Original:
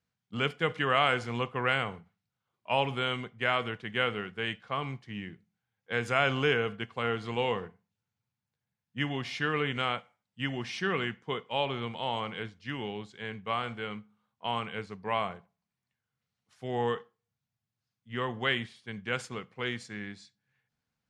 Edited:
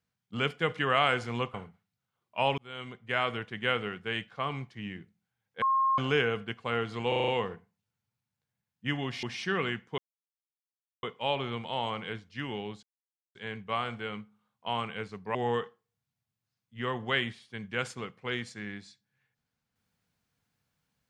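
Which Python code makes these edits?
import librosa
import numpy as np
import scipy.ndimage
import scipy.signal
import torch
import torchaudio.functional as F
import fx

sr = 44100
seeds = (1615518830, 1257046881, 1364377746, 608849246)

y = fx.edit(x, sr, fx.cut(start_s=1.54, length_s=0.32),
    fx.fade_in_span(start_s=2.9, length_s=0.89, curve='qsin'),
    fx.bleep(start_s=5.94, length_s=0.36, hz=1070.0, db=-22.5),
    fx.stutter(start_s=7.4, slice_s=0.04, count=6),
    fx.cut(start_s=9.35, length_s=1.23),
    fx.insert_silence(at_s=11.33, length_s=1.05),
    fx.insert_silence(at_s=13.13, length_s=0.52),
    fx.cut(start_s=15.13, length_s=1.56), tone=tone)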